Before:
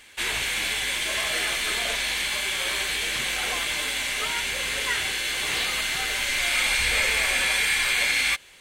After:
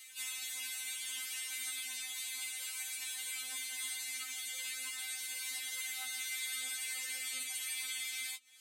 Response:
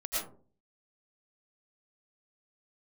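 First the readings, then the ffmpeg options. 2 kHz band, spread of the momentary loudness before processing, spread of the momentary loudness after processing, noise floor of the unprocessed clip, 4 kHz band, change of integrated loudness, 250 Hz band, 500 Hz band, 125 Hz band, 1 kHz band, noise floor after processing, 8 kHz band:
-19.0 dB, 5 LU, 2 LU, -35 dBFS, -16.5 dB, -15.0 dB, under -25 dB, under -30 dB, under -40 dB, -24.5 dB, -45 dBFS, -8.5 dB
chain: -filter_complex "[0:a]acrossover=split=350[a][b];[b]acompressor=threshold=-46dB:ratio=2[c];[a][c]amix=inputs=2:normalize=0,equalizer=f=450:w=4:g=-9,areverse,acompressor=mode=upward:threshold=-54dB:ratio=2.5,areverse,anlmdn=0.0001,flanger=delay=6.8:depth=7.4:regen=31:speed=0.55:shape=triangular,aderivative,afftfilt=real='re*3.46*eq(mod(b,12),0)':imag='im*3.46*eq(mod(b,12),0)':win_size=2048:overlap=0.75,volume=8.5dB"

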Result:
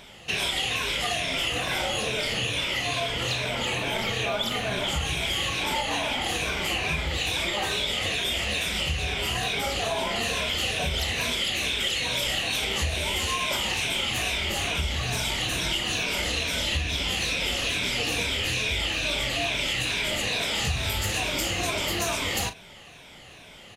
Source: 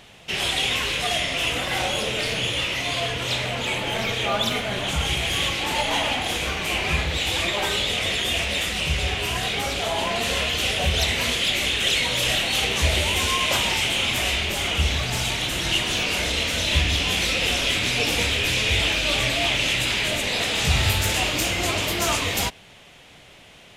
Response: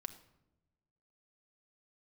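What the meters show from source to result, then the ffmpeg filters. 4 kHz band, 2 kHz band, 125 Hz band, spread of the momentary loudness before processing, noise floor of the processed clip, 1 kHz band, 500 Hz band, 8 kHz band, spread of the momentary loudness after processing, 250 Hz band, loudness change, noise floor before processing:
-4.0 dB, -4.0 dB, -5.0 dB, 4 LU, -47 dBFS, -3.5 dB, -3.5 dB, -4.0 dB, 2 LU, -4.0 dB, -4.0 dB, -48 dBFS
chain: -filter_complex "[0:a]afftfilt=real='re*pow(10,8/40*sin(2*PI*(1.6*log(max(b,1)*sr/1024/100)/log(2)-(-2.3)*(pts-256)/sr)))':imag='im*pow(10,8/40*sin(2*PI*(1.6*log(max(b,1)*sr/1024/100)/log(2)-(-2.3)*(pts-256)/sr)))':win_size=1024:overlap=0.75,asplit=2[a][b];[b]adelay=38,volume=-13.5dB[c];[a][c]amix=inputs=2:normalize=0,acompressor=threshold=-24dB:ratio=6"

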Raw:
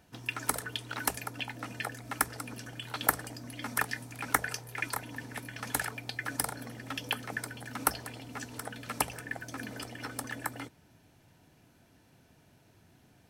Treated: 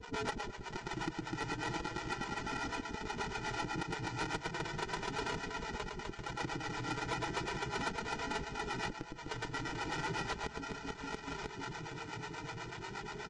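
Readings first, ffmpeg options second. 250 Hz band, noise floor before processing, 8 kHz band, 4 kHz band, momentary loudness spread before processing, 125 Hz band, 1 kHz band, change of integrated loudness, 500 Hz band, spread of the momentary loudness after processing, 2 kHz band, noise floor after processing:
+0.5 dB, -63 dBFS, -11.5 dB, -2.5 dB, 10 LU, 0.0 dB, -1.0 dB, -4.5 dB, +2.5 dB, 6 LU, -4.0 dB, -49 dBFS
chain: -filter_complex "[0:a]aresample=16000,acrusher=samples=29:mix=1:aa=0.000001,aresample=44100,flanger=delay=4:depth=2.9:regen=0:speed=0.37:shape=triangular,lowshelf=f=120:g=6,aecho=1:1:2.1:0.57,bandreject=f=72.93:t=h:w=4,bandreject=f=145.86:t=h:w=4,bandreject=f=218.79:t=h:w=4,acrossover=split=420[a][b];[a]aeval=exprs='val(0)*(1-1/2+1/2*cos(2*PI*8.2*n/s))':c=same[c];[b]aeval=exprs='val(0)*(1-1/2-1/2*cos(2*PI*8.2*n/s))':c=same[d];[c][d]amix=inputs=2:normalize=0,asplit=2[e][f];[f]aecho=0:1:110|253|438.9|680.6|994.7:0.631|0.398|0.251|0.158|0.1[g];[e][g]amix=inputs=2:normalize=0,acompressor=threshold=-55dB:ratio=12,asplit=2[h][i];[i]highpass=f=720:p=1,volume=24dB,asoftclip=type=tanh:threshold=-37.5dB[j];[h][j]amix=inputs=2:normalize=0,lowpass=f=3.8k:p=1,volume=-6dB,volume=13.5dB" -ar 22050 -c:a libvorbis -b:a 48k

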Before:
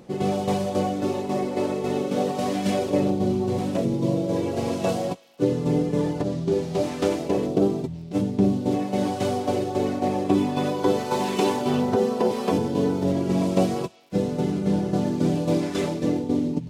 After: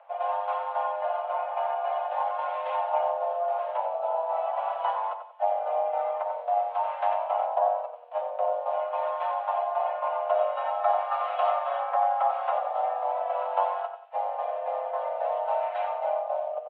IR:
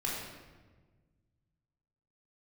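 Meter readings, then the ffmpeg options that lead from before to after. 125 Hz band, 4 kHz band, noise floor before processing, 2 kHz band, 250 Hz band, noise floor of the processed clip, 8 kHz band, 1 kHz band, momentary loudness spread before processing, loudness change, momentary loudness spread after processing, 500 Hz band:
under -40 dB, under -10 dB, -34 dBFS, -3.5 dB, under -40 dB, -39 dBFS, under -40 dB, +5.5 dB, 4 LU, -4.0 dB, 5 LU, -4.0 dB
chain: -filter_complex "[0:a]highpass=f=300:t=q:w=0.5412,highpass=f=300:t=q:w=1.307,lowpass=f=2.8k:t=q:w=0.5176,lowpass=f=2.8k:t=q:w=0.7071,lowpass=f=2.8k:t=q:w=1.932,afreqshift=320,highshelf=f=2.1k:g=-10,asplit=2[a][b];[b]adelay=91,lowpass=f=2k:p=1,volume=-6.5dB,asplit=2[c][d];[d]adelay=91,lowpass=f=2k:p=1,volume=0.37,asplit=2[e][f];[f]adelay=91,lowpass=f=2k:p=1,volume=0.37,asplit=2[g][h];[h]adelay=91,lowpass=f=2k:p=1,volume=0.37[i];[a][c][e][g][i]amix=inputs=5:normalize=0,volume=-1.5dB"

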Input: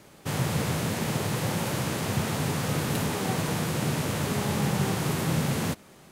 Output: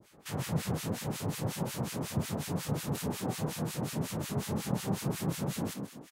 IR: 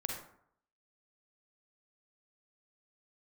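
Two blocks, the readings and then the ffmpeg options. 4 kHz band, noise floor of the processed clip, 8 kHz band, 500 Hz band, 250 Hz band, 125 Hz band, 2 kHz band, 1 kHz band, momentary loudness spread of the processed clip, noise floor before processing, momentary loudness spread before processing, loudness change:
-8.5 dB, -54 dBFS, -6.5 dB, -7.0 dB, -5.5 dB, -6.5 dB, -11.5 dB, -9.0 dB, 2 LU, -52 dBFS, 2 LU, -7.0 dB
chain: -filter_complex "[0:a]asplit=7[a][b][c][d][e][f][g];[b]adelay=130,afreqshift=30,volume=-7dB[h];[c]adelay=260,afreqshift=60,volume=-12.7dB[i];[d]adelay=390,afreqshift=90,volume=-18.4dB[j];[e]adelay=520,afreqshift=120,volume=-24dB[k];[f]adelay=650,afreqshift=150,volume=-29.7dB[l];[g]adelay=780,afreqshift=180,volume=-35.4dB[m];[a][h][i][j][k][l][m]amix=inputs=7:normalize=0,acrossover=split=1300[n][o];[n]aeval=exprs='val(0)*(1-1/2+1/2*cos(2*PI*5.5*n/s))':c=same[p];[o]aeval=exprs='val(0)*(1-1/2-1/2*cos(2*PI*5.5*n/s))':c=same[q];[p][q]amix=inputs=2:normalize=0,adynamicequalizer=threshold=0.002:dfrequency=1900:dqfactor=0.74:tfrequency=1900:tqfactor=0.74:attack=5:release=100:ratio=0.375:range=2.5:mode=cutabove:tftype=bell,volume=-3dB"

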